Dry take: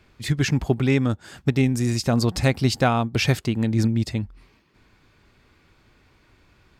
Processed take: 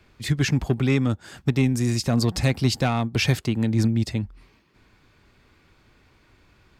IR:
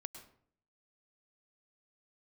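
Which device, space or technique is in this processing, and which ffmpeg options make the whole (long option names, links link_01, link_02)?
one-band saturation: -filter_complex "[0:a]acrossover=split=270|2000[link_01][link_02][link_03];[link_02]asoftclip=type=tanh:threshold=-21.5dB[link_04];[link_01][link_04][link_03]amix=inputs=3:normalize=0"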